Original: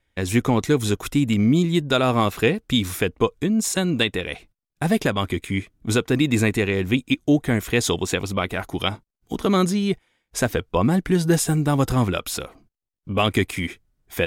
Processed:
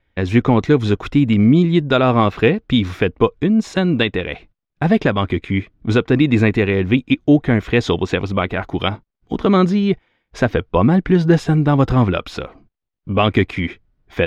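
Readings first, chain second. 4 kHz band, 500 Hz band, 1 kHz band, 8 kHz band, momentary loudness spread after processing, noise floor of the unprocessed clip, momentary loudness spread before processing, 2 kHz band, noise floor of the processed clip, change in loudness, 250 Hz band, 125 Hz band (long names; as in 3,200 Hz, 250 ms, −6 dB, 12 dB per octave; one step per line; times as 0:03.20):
+0.5 dB, +5.5 dB, +5.0 dB, below −10 dB, 9 LU, −84 dBFS, 9 LU, +3.5 dB, −78 dBFS, +5.0 dB, +5.5 dB, +6.0 dB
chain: high-frequency loss of the air 240 metres
level +6 dB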